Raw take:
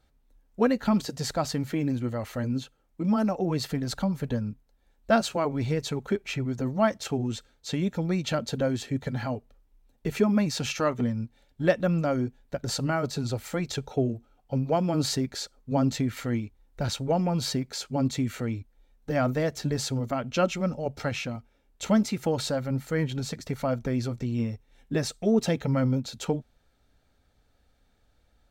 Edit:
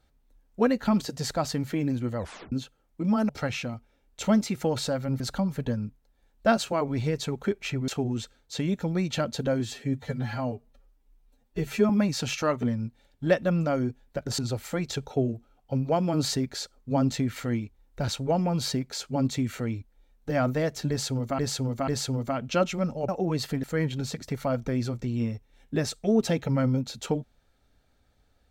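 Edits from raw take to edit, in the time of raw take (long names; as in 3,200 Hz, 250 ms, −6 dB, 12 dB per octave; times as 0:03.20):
0:02.18: tape stop 0.34 s
0:03.29–0:03.84: swap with 0:20.91–0:22.82
0:06.52–0:07.02: remove
0:08.74–0:10.27: time-stretch 1.5×
0:12.76–0:13.19: remove
0:19.70–0:20.19: repeat, 3 plays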